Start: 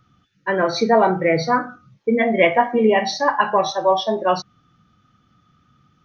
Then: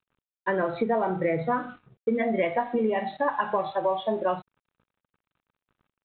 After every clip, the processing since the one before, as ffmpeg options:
-af "highshelf=f=2.5k:g=-9.5,acompressor=threshold=-22dB:ratio=6,aresample=8000,aeval=exprs='sgn(val(0))*max(abs(val(0))-0.00224,0)':c=same,aresample=44100"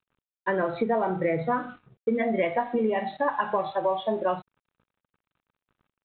-af anull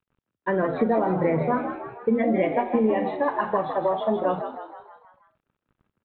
-filter_complex "[0:a]lowpass=f=2.7k:p=1,lowshelf=f=350:g=7,asplit=2[a][b];[b]asplit=6[c][d][e][f][g][h];[c]adelay=159,afreqshift=76,volume=-9dB[i];[d]adelay=318,afreqshift=152,volume=-14.7dB[j];[e]adelay=477,afreqshift=228,volume=-20.4dB[k];[f]adelay=636,afreqshift=304,volume=-26dB[l];[g]adelay=795,afreqshift=380,volume=-31.7dB[m];[h]adelay=954,afreqshift=456,volume=-37.4dB[n];[i][j][k][l][m][n]amix=inputs=6:normalize=0[o];[a][o]amix=inputs=2:normalize=0"

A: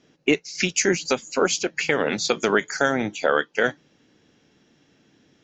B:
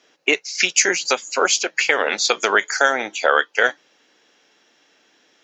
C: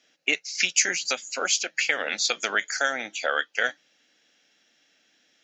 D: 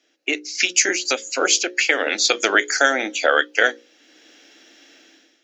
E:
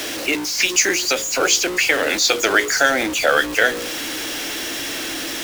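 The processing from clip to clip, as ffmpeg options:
-af "highpass=620,volume=6.5dB"
-af "equalizer=f=100:t=o:w=0.67:g=-3,equalizer=f=400:t=o:w=0.67:g=-10,equalizer=f=1k:t=o:w=0.67:g=-12,volume=-4.5dB"
-af "dynaudnorm=f=160:g=5:m=15.5dB,highpass=f=320:t=q:w=3.7,bandreject=f=60:t=h:w=6,bandreject=f=120:t=h:w=6,bandreject=f=180:t=h:w=6,bandreject=f=240:t=h:w=6,bandreject=f=300:t=h:w=6,bandreject=f=360:t=h:w=6,bandreject=f=420:t=h:w=6,bandreject=f=480:t=h:w=6,bandreject=f=540:t=h:w=6,volume=-1.5dB"
-af "aeval=exprs='val(0)+0.5*0.1*sgn(val(0))':c=same,volume=-1dB"

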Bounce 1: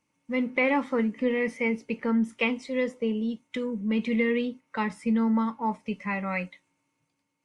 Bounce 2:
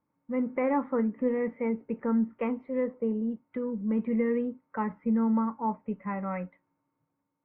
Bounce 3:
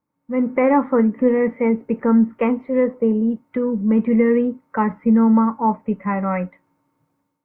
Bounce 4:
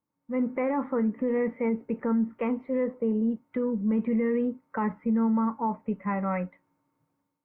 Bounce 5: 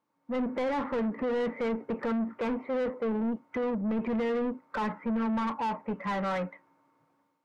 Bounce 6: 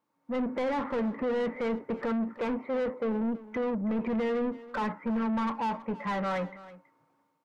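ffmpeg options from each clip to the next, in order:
-af "lowpass=f=1.5k:w=0.5412,lowpass=f=1.5k:w=1.3066,volume=-1.5dB"
-af "dynaudnorm=f=130:g=5:m=11.5dB"
-af "alimiter=limit=-12.5dB:level=0:latency=1:release=38,volume=-7dB"
-filter_complex "[0:a]asplit=2[a][b];[b]highpass=f=720:p=1,volume=23dB,asoftclip=type=tanh:threshold=-19dB[c];[a][c]amix=inputs=2:normalize=0,lowpass=f=1.7k:p=1,volume=-6dB,volume=-4.5dB"
-af "aecho=1:1:326:0.126"

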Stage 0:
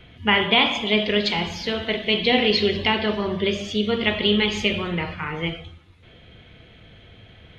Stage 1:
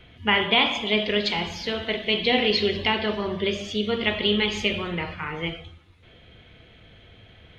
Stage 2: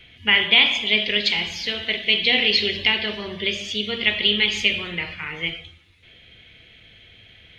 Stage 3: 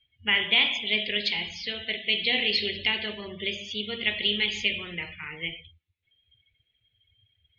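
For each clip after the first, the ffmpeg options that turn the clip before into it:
-af "equalizer=f=160:w=1:g=-2.5,volume=-2dB"
-af "highshelf=f=1.6k:t=q:w=1.5:g=8.5,volume=-4dB"
-af "afftdn=nr=26:nf=-37,volume=-6.5dB"

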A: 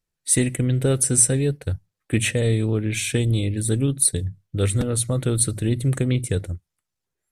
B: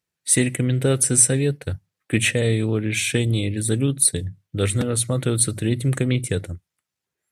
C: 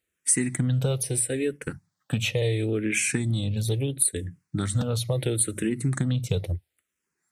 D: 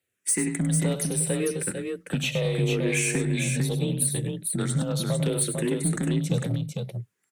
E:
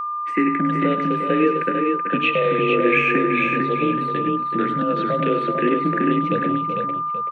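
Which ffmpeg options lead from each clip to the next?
-af "highpass=97,equalizer=f=2.2k:w=0.83:g=3.5,volume=1dB"
-filter_complex "[0:a]acompressor=threshold=-24dB:ratio=6,asplit=2[a][b];[b]afreqshift=-0.74[c];[a][c]amix=inputs=2:normalize=1,volume=5dB"
-filter_complex "[0:a]afreqshift=31,asoftclip=type=tanh:threshold=-17dB,asplit=2[a][b];[b]aecho=0:1:65|100|450:0.112|0.335|0.596[c];[a][c]amix=inputs=2:normalize=0"
-filter_complex "[0:a]highpass=f=200:w=0.5412,highpass=f=200:w=1.3066,equalizer=f=310:t=q:w=4:g=7,equalizer=f=500:t=q:w=4:g=4,equalizer=f=820:t=q:w=4:g=-8,equalizer=f=1.7k:t=q:w=4:g=7,equalizer=f=2.6k:t=q:w=4:g=8,lowpass=f=2.7k:w=0.5412,lowpass=f=2.7k:w=1.3066,aeval=exprs='val(0)+0.0398*sin(2*PI*1200*n/s)':c=same,asplit=2[a][b];[b]adelay=379,volume=-8dB,highshelf=f=4k:g=-8.53[c];[a][c]amix=inputs=2:normalize=0,volume=4.5dB"

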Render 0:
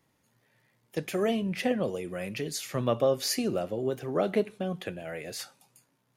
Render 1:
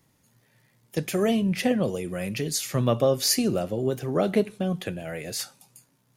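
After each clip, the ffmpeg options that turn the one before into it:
-af "bass=f=250:g=6,treble=f=4k:g=6,volume=2.5dB"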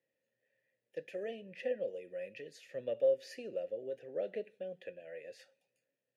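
-filter_complex "[0:a]asplit=3[a][b][c];[a]bandpass=f=530:t=q:w=8,volume=0dB[d];[b]bandpass=f=1.84k:t=q:w=8,volume=-6dB[e];[c]bandpass=f=2.48k:t=q:w=8,volume=-9dB[f];[d][e][f]amix=inputs=3:normalize=0,volume=-5.5dB"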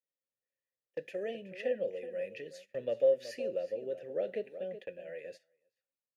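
-filter_complex "[0:a]asplit=2[a][b];[b]adelay=373.2,volume=-12dB,highshelf=f=4k:g=-8.4[c];[a][c]amix=inputs=2:normalize=0,agate=range=-21dB:threshold=-51dB:ratio=16:detection=peak,volume=3dB"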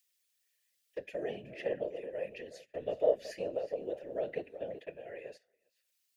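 -filter_complex "[0:a]acrossover=split=370|2000[a][b][c];[c]acompressor=mode=upward:threshold=-60dB:ratio=2.5[d];[a][b][d]amix=inputs=3:normalize=0,afftfilt=real='hypot(re,im)*cos(2*PI*random(0))':imag='hypot(re,im)*sin(2*PI*random(1))':win_size=512:overlap=0.75,volume=5dB"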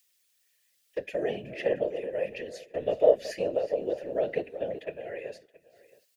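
-af "aecho=1:1:673:0.0891,volume=7.5dB"

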